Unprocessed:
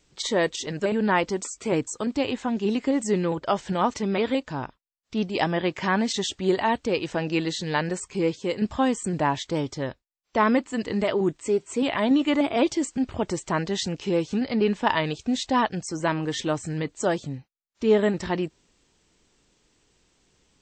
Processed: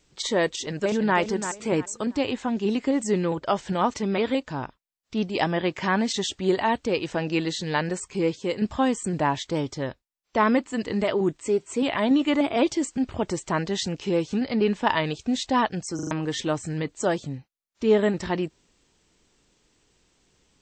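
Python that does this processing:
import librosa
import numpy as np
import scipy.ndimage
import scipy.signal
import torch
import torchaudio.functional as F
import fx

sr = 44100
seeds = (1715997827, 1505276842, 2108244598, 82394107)

y = fx.echo_throw(x, sr, start_s=0.51, length_s=0.66, ms=340, feedback_pct=30, wet_db=-9.5)
y = fx.edit(y, sr, fx.stutter_over(start_s=15.95, slice_s=0.04, count=4), tone=tone)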